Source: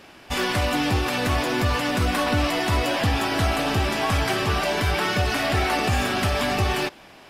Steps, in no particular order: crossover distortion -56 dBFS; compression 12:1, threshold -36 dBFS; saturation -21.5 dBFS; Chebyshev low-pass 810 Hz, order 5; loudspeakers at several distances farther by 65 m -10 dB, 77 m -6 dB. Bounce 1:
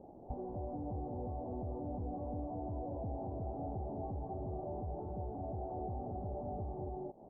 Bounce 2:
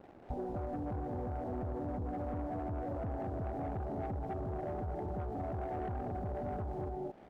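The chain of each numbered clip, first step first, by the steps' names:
loudspeakers at several distances > saturation > compression > crossover distortion > Chebyshev low-pass; Chebyshev low-pass > crossover distortion > loudspeakers at several distances > saturation > compression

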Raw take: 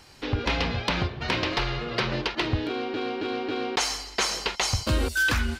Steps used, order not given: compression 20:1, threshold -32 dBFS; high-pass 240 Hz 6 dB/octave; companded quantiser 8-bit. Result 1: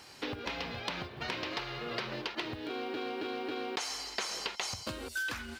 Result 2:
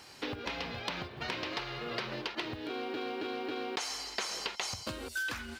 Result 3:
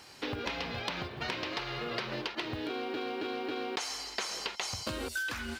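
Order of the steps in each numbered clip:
compression > companded quantiser > high-pass; companded quantiser > compression > high-pass; companded quantiser > high-pass > compression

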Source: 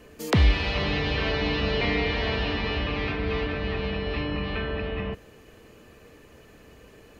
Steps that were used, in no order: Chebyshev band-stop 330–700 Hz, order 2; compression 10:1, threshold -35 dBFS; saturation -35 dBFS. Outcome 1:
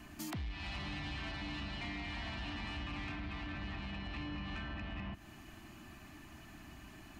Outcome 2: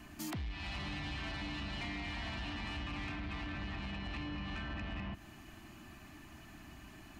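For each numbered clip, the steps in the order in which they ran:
compression > Chebyshev band-stop > saturation; Chebyshev band-stop > compression > saturation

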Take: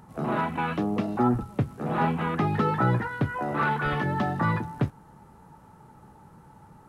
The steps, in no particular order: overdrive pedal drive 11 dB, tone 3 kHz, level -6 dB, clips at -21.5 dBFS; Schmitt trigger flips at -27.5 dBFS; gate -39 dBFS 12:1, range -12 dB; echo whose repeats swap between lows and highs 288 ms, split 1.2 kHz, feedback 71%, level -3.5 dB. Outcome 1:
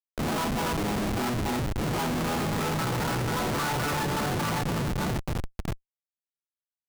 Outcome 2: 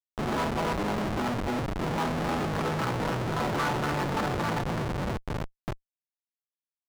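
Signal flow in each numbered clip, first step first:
echo whose repeats swap between lows and highs > overdrive pedal > gate > Schmitt trigger; echo whose repeats swap between lows and highs > gate > Schmitt trigger > overdrive pedal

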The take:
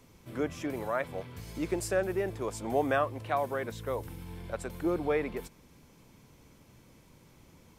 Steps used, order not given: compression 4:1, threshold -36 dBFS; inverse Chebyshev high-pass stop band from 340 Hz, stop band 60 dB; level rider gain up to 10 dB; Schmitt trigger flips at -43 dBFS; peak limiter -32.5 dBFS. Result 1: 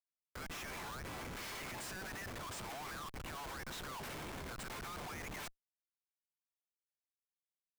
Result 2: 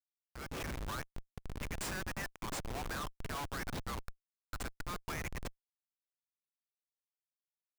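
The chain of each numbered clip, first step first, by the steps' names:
inverse Chebyshev high-pass > compression > level rider > peak limiter > Schmitt trigger; inverse Chebyshev high-pass > peak limiter > compression > Schmitt trigger > level rider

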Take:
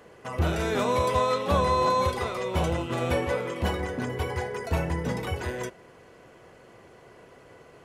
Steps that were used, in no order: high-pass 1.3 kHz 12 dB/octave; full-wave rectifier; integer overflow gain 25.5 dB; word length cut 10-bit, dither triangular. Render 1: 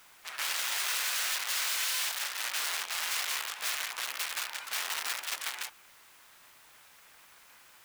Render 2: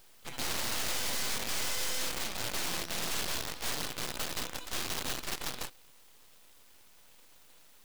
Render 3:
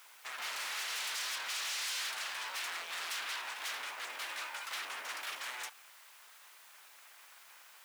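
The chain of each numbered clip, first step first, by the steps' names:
full-wave rectifier > integer overflow > high-pass > word length cut; integer overflow > word length cut > high-pass > full-wave rectifier; integer overflow > full-wave rectifier > word length cut > high-pass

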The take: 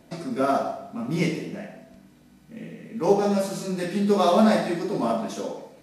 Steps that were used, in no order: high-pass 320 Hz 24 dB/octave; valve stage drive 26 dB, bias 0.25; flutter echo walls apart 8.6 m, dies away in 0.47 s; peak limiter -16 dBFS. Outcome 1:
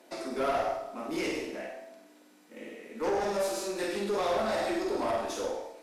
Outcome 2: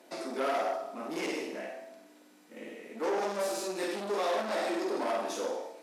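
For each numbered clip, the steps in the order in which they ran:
peak limiter > high-pass > valve stage > flutter echo; peak limiter > flutter echo > valve stage > high-pass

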